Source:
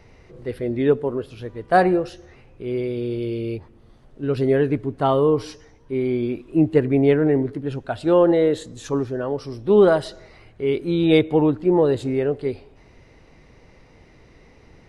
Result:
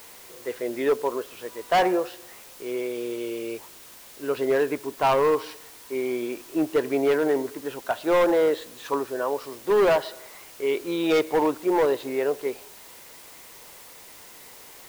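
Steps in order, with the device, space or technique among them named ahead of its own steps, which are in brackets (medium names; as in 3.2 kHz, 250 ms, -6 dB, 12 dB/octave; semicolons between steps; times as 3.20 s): drive-through speaker (band-pass 500–3500 Hz; peaking EQ 1 kHz +7.5 dB 0.25 oct; hard clipper -18 dBFS, distortion -10 dB; white noise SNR 21 dB); trim +2 dB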